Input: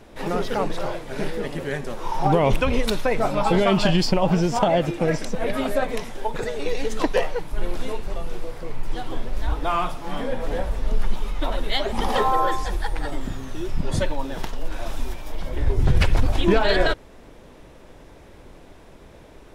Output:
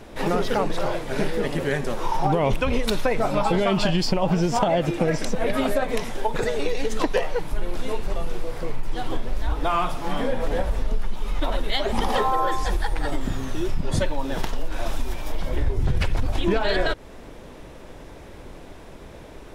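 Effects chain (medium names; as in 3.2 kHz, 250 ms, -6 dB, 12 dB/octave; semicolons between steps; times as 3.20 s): compression 5:1, threshold -22 dBFS, peak gain reduction 10.5 dB; trim +4.5 dB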